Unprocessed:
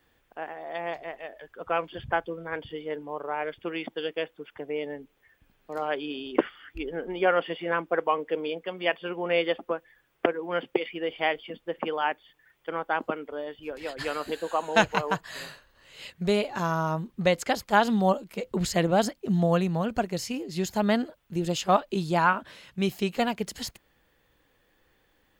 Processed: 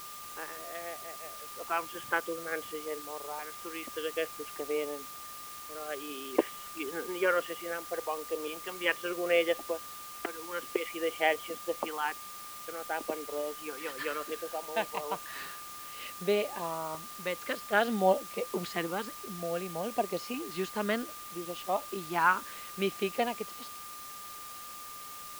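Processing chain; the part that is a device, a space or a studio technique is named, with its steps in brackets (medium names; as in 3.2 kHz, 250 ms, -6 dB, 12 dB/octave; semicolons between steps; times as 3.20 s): shortwave radio (band-pass 350–2900 Hz; tremolo 0.44 Hz, depth 66%; LFO notch saw up 0.59 Hz 520–1800 Hz; whistle 1.2 kHz -47 dBFS; white noise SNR 12 dB); trim +1.5 dB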